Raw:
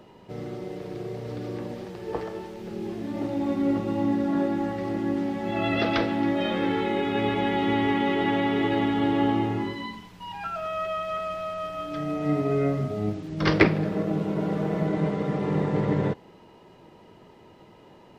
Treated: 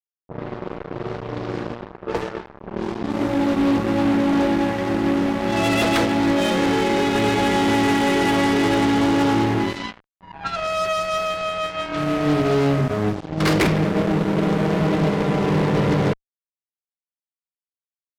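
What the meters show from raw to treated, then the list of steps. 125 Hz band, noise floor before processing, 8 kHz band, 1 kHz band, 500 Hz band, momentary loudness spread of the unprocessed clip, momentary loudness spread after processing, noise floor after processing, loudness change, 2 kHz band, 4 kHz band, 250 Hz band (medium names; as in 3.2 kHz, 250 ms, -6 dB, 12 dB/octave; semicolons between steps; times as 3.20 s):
+6.0 dB, -52 dBFS, no reading, +6.5 dB, +6.0 dB, 12 LU, 12 LU, under -85 dBFS, +6.5 dB, +6.5 dB, +8.5 dB, +5.5 dB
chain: fuzz box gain 26 dB, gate -35 dBFS; level-controlled noise filter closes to 700 Hz, open at -17.5 dBFS; trim -1.5 dB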